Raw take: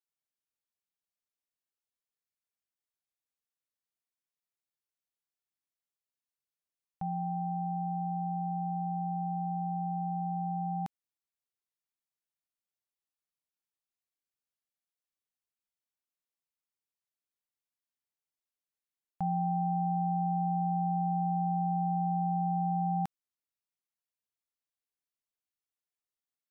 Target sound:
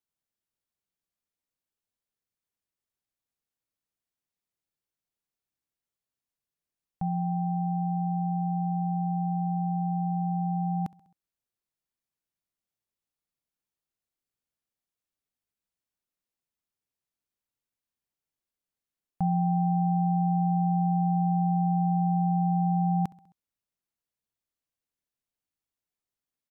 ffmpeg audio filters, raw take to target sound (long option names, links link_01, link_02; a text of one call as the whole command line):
ffmpeg -i in.wav -af "lowshelf=frequency=430:gain=9,aecho=1:1:66|132|198|264:0.0794|0.0469|0.0277|0.0163" out.wav